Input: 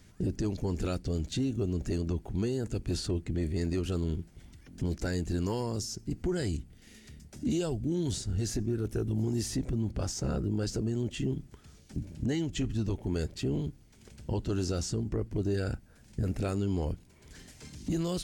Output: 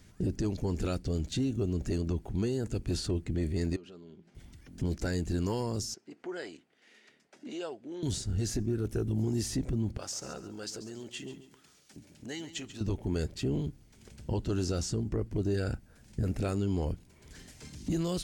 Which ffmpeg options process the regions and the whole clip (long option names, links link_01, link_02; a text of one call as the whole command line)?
ffmpeg -i in.wav -filter_complex "[0:a]asettb=1/sr,asplit=3[link_01][link_02][link_03];[link_01]atrim=end=3.764[link_04];[link_02]atrim=start=3.76:end=4.35,asetpts=PTS-STARTPTS,afade=type=in:duration=0.004:curve=qsin,afade=type=out:start_time=0.586:duration=0.004:curve=qsin,aecho=1:1:5:0.34,atrim=end_sample=26019,acompressor=threshold=-45dB:ratio=5:attack=3.2:release=140:knee=1:detection=peak,highpass=220,lowpass=4600[link_05];[link_03]atrim=start=4.346[link_06];[link_04][link_05]acrossfade=duration=0.004:curve1=hsin:curve2=qsin[link_07];[link_07][link_06]acrossfade=duration=0.004:curve1=qsin:curve2=hsin,asettb=1/sr,asplit=3[link_08][link_09][link_10];[link_08]atrim=end=5.944[link_11];[link_09]atrim=start=5.94:end=8.03,asetpts=PTS-STARTPTS,afade=type=in:duration=0.004:curve=qsin,afade=type=out:start_time=2.086:duration=0.004:curve=qsin,highpass=420,lowpass=2300,aemphasis=mode=production:type=bsi[link_12];[link_10]atrim=start=8.026[link_13];[link_11][link_12]acrossfade=duration=0.004:curve1=hsin:curve2=qsin[link_14];[link_14][link_13]acrossfade=duration=0.004:curve1=qsin:curve2=hsin,asettb=1/sr,asplit=3[link_15][link_16][link_17];[link_15]atrim=end=9.974[link_18];[link_16]atrim=start=9.97:end=12.81,asetpts=PTS-STARTPTS,afade=type=in:duration=0.004:curve=qsin,afade=type=out:start_time=2.836:duration=0.004:curve=qsin,highpass=frequency=960:poles=1,aecho=1:1:138|276|414:0.224|0.0672|0.0201,atrim=end_sample=125244[link_19];[link_17]atrim=start=12.806[link_20];[link_18][link_19]acrossfade=duration=0.004:curve1=hsin:curve2=qsin[link_21];[link_21][link_20]acrossfade=duration=0.004:curve1=qsin:curve2=hsin" out.wav